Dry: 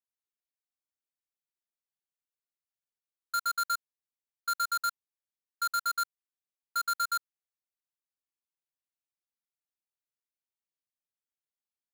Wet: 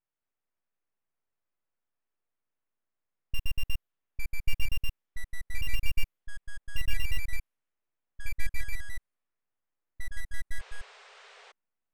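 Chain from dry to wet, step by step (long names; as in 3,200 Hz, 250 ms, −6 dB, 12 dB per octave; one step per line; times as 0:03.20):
dynamic equaliser 320 Hz, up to +6 dB, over −55 dBFS, Q 0.95
full-wave rectification
flat-topped bell 6,600 Hz −8 dB
sound drawn into the spectrogram noise, 0:10.59–0:11.52, 390–9,200 Hz −55 dBFS
low-pass that shuts in the quiet parts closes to 2,100 Hz, open at −33.5 dBFS
delay with pitch and tempo change per echo 221 ms, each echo −3 semitones, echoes 3
level +7 dB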